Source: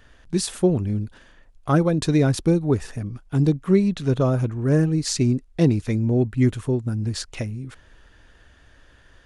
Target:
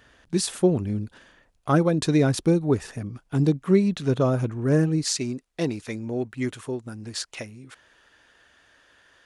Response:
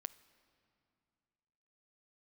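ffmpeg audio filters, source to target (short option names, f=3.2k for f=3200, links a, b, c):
-af "asetnsamples=n=441:p=0,asendcmd='5.06 highpass f 620',highpass=f=140:p=1"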